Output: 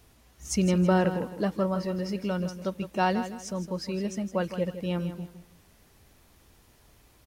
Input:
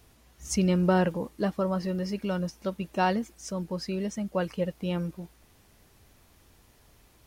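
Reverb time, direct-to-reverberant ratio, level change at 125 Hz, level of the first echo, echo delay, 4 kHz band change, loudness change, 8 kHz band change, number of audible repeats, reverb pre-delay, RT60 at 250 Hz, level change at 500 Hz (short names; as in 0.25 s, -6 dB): none, none, +0.5 dB, -11.0 dB, 0.161 s, +0.5 dB, +0.5 dB, +0.5 dB, 3, none, none, +0.5 dB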